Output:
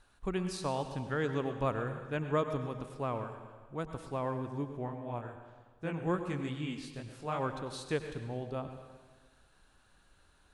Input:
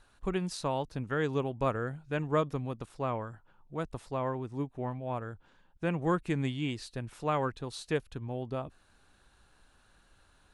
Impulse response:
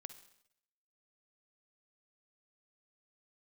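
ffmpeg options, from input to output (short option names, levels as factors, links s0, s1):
-filter_complex "[0:a]asplit=3[s0][s1][s2];[s0]afade=t=out:st=4.86:d=0.02[s3];[s1]flanger=delay=18.5:depth=6.9:speed=2.4,afade=t=in:st=4.86:d=0.02,afade=t=out:st=7.39:d=0.02[s4];[s2]afade=t=in:st=7.39:d=0.02[s5];[s3][s4][s5]amix=inputs=3:normalize=0[s6];[1:a]atrim=start_sample=2205,asetrate=22491,aresample=44100[s7];[s6][s7]afir=irnorm=-1:irlink=0"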